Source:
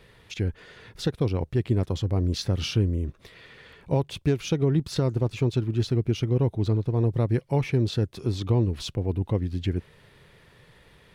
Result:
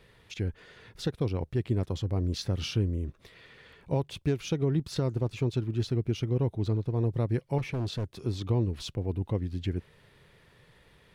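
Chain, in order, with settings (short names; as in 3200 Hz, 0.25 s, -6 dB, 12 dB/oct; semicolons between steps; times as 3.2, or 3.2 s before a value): 7.58–8.13 overloaded stage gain 23 dB; gain -4.5 dB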